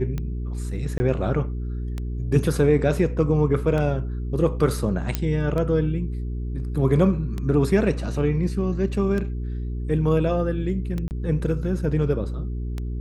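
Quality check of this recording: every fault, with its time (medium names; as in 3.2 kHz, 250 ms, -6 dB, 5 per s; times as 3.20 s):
hum 60 Hz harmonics 7 -28 dBFS
tick 33 1/3 rpm -17 dBFS
0.98–1.00 s: dropout 20 ms
5.15 s: pop -8 dBFS
11.08–11.11 s: dropout 29 ms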